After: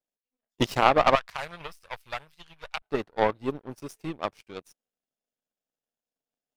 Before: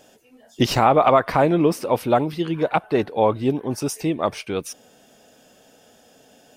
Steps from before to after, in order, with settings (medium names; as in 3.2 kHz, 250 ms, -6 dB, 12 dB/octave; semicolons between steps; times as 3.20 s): partial rectifier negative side -3 dB; power-law waveshaper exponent 2; 1.15–2.82 s: amplifier tone stack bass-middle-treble 10-0-10; trim +3.5 dB